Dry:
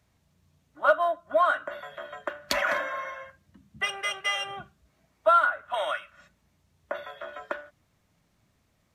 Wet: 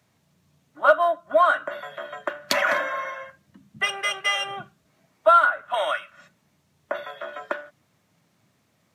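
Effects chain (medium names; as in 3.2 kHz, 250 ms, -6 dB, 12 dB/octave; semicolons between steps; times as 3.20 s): high-pass 110 Hz 24 dB/octave; trim +4.5 dB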